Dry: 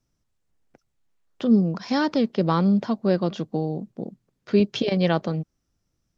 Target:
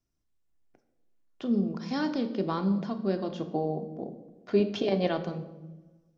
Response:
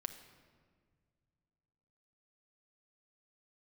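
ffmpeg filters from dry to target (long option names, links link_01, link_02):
-filter_complex "[0:a]asettb=1/sr,asplit=3[link_01][link_02][link_03];[link_01]atrim=end=3.404[link_04];[link_02]atrim=start=3.4:end=5.07,asetpts=PTS-STARTPTS,afade=type=in:duration=0.004:curve=qsin,afade=type=out:start_time=1.666:duration=0.004:curve=qsin,equalizer=frequency=740:width=0.75:gain=9[link_05];[link_03]atrim=start=5.066[link_06];[link_04][link_05]acrossfade=duration=0.004:curve1=hsin:curve2=qsin[link_07];[link_07][link_06]acrossfade=duration=0.004:curve1=qsin:curve2=hsin[link_08];[1:a]atrim=start_sample=2205,asetrate=88200,aresample=44100[link_09];[link_08][link_09]afir=irnorm=-1:irlink=0"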